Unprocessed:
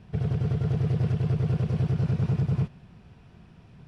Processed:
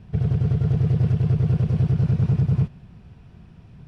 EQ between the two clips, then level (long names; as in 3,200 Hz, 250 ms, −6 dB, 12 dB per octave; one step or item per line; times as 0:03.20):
low-shelf EQ 190 Hz +8 dB
0.0 dB